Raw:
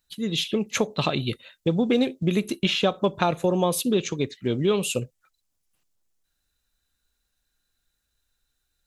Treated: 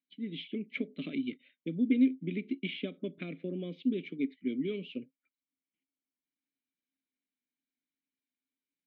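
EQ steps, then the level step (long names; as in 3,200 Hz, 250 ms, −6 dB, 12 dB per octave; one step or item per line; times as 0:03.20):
formant filter i
high-frequency loss of the air 140 metres
loudspeaker in its box 160–4,200 Hz, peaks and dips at 170 Hz +9 dB, 260 Hz +4 dB, 410 Hz +6 dB, 600 Hz +7 dB, 2,200 Hz +5 dB
−2.5 dB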